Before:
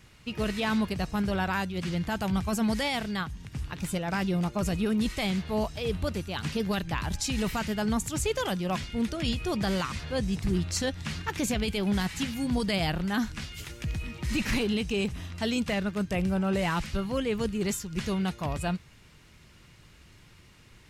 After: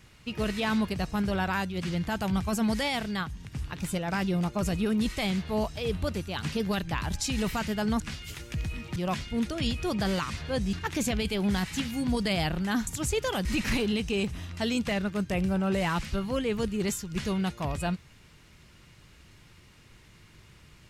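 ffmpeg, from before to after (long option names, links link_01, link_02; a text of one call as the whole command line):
ffmpeg -i in.wav -filter_complex "[0:a]asplit=6[link_01][link_02][link_03][link_04][link_05][link_06];[link_01]atrim=end=8.002[link_07];[link_02]atrim=start=13.298:end=14.262[link_08];[link_03]atrim=start=8.578:end=10.352[link_09];[link_04]atrim=start=11.158:end=13.302[link_10];[link_05]atrim=start=7.998:end=8.582[link_11];[link_06]atrim=start=14.258[link_12];[link_07][link_08]acrossfade=duration=0.004:curve1=hsin:curve2=hsin[link_13];[link_13][link_09]acrossfade=duration=0.004:curve1=hsin:curve2=hsin[link_14];[link_14][link_10]acrossfade=duration=0.004:curve1=hsin:curve2=hsin[link_15];[link_15][link_11]acrossfade=duration=0.004:curve1=hsin:curve2=hsin[link_16];[link_16][link_12]acrossfade=duration=0.004:curve1=hsin:curve2=hsin" out.wav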